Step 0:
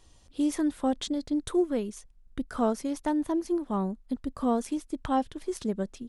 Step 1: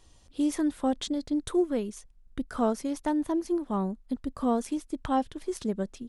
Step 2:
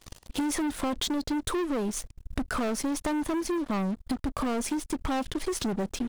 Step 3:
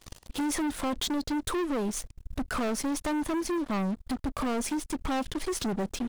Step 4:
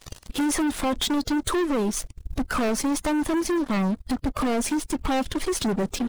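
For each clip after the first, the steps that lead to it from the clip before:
no audible change
waveshaping leveller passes 5; compression 12:1, threshold -29 dBFS, peak gain reduction 13 dB; trim +1.5 dB
overload inside the chain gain 27 dB
coarse spectral quantiser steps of 15 dB; trim +6 dB

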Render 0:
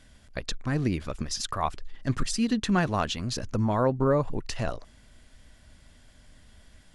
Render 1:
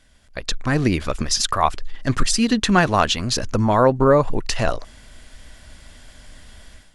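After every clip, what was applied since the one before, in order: peaking EQ 140 Hz -5.5 dB 2.8 oct; level rider gain up to 12.5 dB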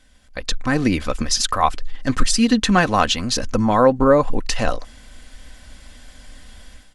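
comb 3.9 ms, depth 41%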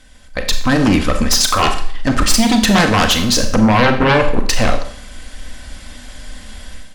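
sine folder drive 12 dB, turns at -1.5 dBFS; Schroeder reverb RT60 0.55 s, combs from 29 ms, DRR 6 dB; trim -7.5 dB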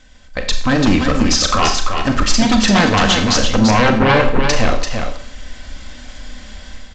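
delay 339 ms -6 dB; trim -1 dB; G.722 64 kbps 16 kHz

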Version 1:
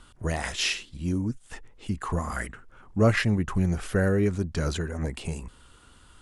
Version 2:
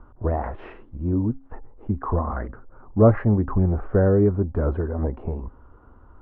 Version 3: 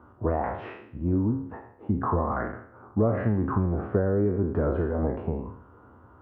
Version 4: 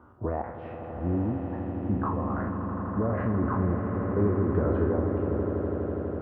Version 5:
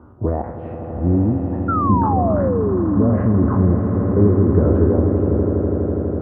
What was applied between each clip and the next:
low-pass 1.1 kHz 24 dB/octave; peaking EQ 160 Hz -10 dB 0.45 oct; de-hum 269.5 Hz, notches 3; trim +7 dB
spectral sustain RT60 0.60 s; high-pass 83 Hz 24 dB/octave; compression 6:1, threshold -20 dBFS, peak gain reduction 11.5 dB
peak limiter -17 dBFS, peak gain reduction 5.5 dB; random-step tremolo 2.4 Hz, depth 70%; echo with a slow build-up 82 ms, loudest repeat 8, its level -12 dB
tilt shelf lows +7.5 dB, about 890 Hz; painted sound fall, 1.68–3.17 s, 220–1400 Hz -25 dBFS; trim +4.5 dB

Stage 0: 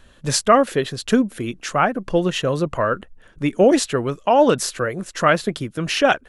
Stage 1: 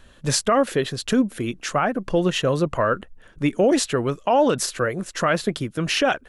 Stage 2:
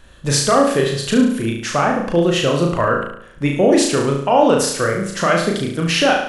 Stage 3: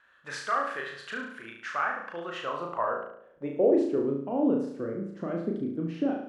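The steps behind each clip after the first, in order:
peak limiter -10 dBFS, peak gain reduction 8 dB
flutter echo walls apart 6.1 m, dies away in 0.67 s; trim +2.5 dB
band-pass sweep 1.5 kHz -> 280 Hz, 2.14–4.25 s; trim -5.5 dB

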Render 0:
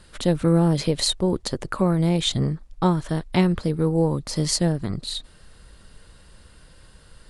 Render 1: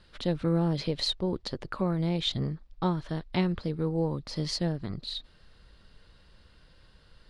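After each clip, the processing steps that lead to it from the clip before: resonant high shelf 6.1 kHz -11 dB, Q 1.5; trim -8 dB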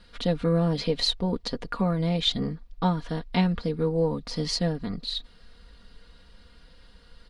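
comb 4.2 ms, depth 69%; trim +2.5 dB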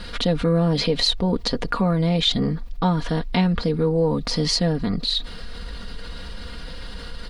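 level flattener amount 50%; trim +2.5 dB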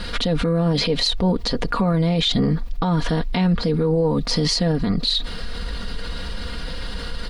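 peak limiter -17 dBFS, peak gain reduction 9 dB; trim +5.5 dB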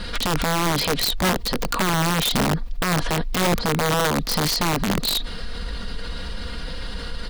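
integer overflow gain 13 dB; trim -1.5 dB

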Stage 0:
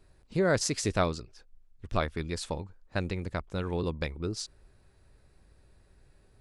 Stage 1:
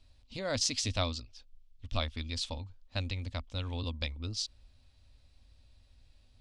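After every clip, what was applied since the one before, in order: FFT filter 100 Hz 0 dB, 170 Hz -18 dB, 250 Hz 0 dB, 380 Hz -20 dB, 540 Hz -7 dB, 1.1 kHz -7 dB, 1.6 kHz -11 dB, 3.2 kHz +7 dB, 5.7 kHz +2 dB, 13 kHz -14 dB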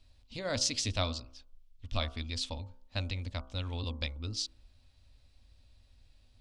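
de-hum 64.75 Hz, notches 23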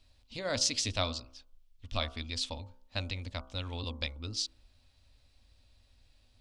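bass shelf 230 Hz -5 dB; trim +1.5 dB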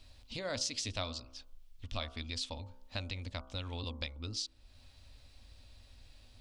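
compression 2:1, threshold -52 dBFS, peak gain reduction 14.5 dB; trim +7 dB

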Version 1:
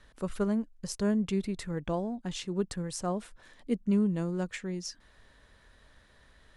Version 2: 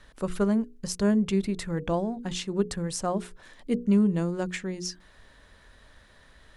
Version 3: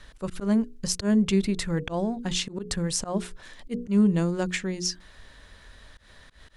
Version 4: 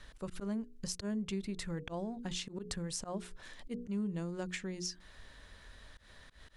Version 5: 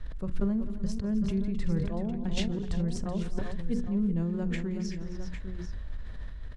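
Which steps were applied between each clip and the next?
hum notches 60/120/180/240/300/360/420/480 Hz; trim +5 dB
bass shelf 120 Hz +5 dB; slow attack 121 ms; peaking EQ 4.6 kHz +5 dB 2.7 oct; trim +1.5 dB
compression 2.5:1, threshold -34 dBFS, peak gain reduction 12 dB; trim -5 dB
RIAA curve playback; multi-tap echo 47/174/262/378/804 ms -18/-19.5/-14.5/-10/-10.5 dB; decay stretcher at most 31 dB/s; trim -1 dB

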